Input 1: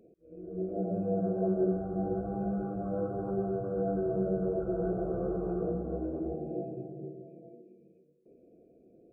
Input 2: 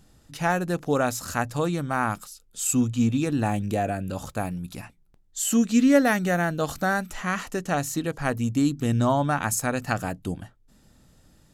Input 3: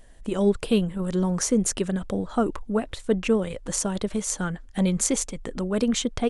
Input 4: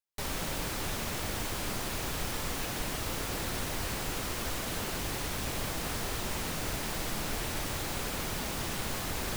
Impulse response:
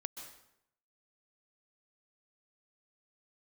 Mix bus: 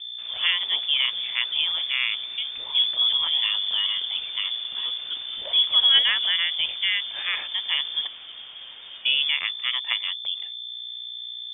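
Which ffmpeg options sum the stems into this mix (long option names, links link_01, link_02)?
-filter_complex "[0:a]adelay=2350,volume=-7.5dB[link_01];[1:a]aeval=exprs='val(0)+0.02*(sin(2*PI*60*n/s)+sin(2*PI*2*60*n/s)/2+sin(2*PI*3*60*n/s)/3+sin(2*PI*4*60*n/s)/4+sin(2*PI*5*60*n/s)/5)':channel_layout=same,volume=-0.5dB,asplit=3[link_02][link_03][link_04];[link_02]atrim=end=8.07,asetpts=PTS-STARTPTS,afade=type=out:start_time=8.066:duration=0.004:curve=hsin[link_05];[link_03]atrim=start=8.07:end=9.05,asetpts=PTS-STARTPTS,volume=0[link_06];[link_04]atrim=start=9.05,asetpts=PTS-STARTPTS,afade=type=in:duration=0.004:curve=hsin[link_07];[link_05][link_06][link_07]concat=n=3:v=0:a=1[link_08];[2:a]volume=-9dB[link_09];[3:a]flanger=delay=4.4:depth=4.6:regen=-46:speed=1.9:shape=triangular,volume=-7dB[link_10];[link_01][link_08][link_09][link_10]amix=inputs=4:normalize=0,lowpass=frequency=3100:width_type=q:width=0.5098,lowpass=frequency=3100:width_type=q:width=0.6013,lowpass=frequency=3100:width_type=q:width=0.9,lowpass=frequency=3100:width_type=q:width=2.563,afreqshift=-3600"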